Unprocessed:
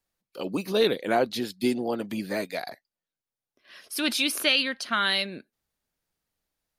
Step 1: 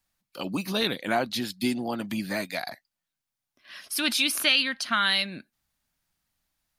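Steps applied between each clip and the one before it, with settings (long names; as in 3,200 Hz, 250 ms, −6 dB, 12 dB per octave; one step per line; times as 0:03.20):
parametric band 440 Hz −12 dB 0.8 octaves
in parallel at −2 dB: downward compressor, threshold −35 dBFS, peak gain reduction 15.5 dB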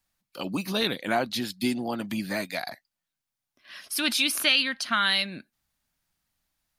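no processing that can be heard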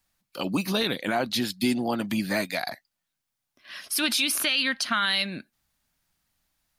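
brickwall limiter −17.5 dBFS, peak gain reduction 8.5 dB
level +3.5 dB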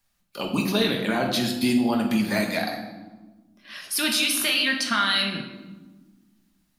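convolution reverb RT60 1.3 s, pre-delay 5 ms, DRR 1.5 dB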